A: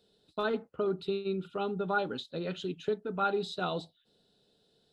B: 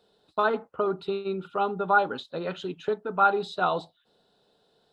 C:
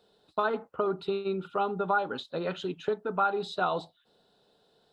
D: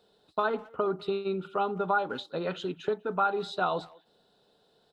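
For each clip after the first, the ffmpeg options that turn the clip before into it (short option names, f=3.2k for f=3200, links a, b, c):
-af "equalizer=f=990:w=0.75:g=13.5,volume=-1dB"
-af "acompressor=threshold=-25dB:ratio=2.5"
-filter_complex "[0:a]asplit=2[a][b];[b]adelay=200,highpass=300,lowpass=3.4k,asoftclip=type=hard:threshold=-24dB,volume=-23dB[c];[a][c]amix=inputs=2:normalize=0"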